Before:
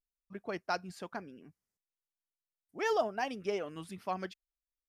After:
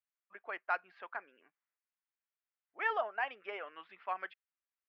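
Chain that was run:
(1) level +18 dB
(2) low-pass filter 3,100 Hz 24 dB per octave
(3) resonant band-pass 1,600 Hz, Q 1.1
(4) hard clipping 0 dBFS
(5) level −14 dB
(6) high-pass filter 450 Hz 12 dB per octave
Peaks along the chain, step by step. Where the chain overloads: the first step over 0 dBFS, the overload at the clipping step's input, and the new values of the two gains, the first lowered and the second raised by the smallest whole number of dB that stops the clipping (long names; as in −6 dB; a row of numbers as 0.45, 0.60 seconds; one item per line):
−0.5, −0.5, −5.5, −5.5, −19.5, −20.5 dBFS
no step passes full scale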